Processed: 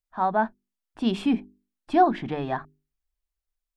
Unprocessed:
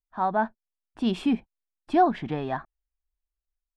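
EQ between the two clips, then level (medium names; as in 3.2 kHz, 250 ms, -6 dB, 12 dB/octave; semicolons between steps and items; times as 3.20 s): hum notches 50/100/150/200/250/300/350/400 Hz; +1.5 dB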